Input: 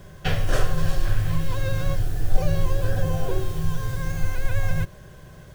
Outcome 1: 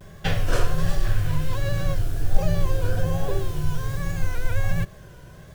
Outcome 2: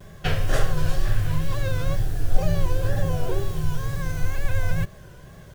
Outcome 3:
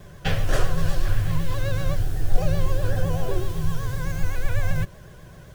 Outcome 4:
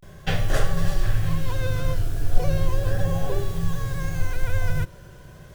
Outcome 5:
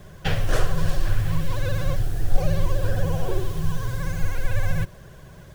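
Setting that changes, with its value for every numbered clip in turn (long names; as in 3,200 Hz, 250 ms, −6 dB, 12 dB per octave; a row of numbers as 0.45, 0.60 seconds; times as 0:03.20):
pitch vibrato, speed: 1.3, 2.1, 7.9, 0.36, 16 Hertz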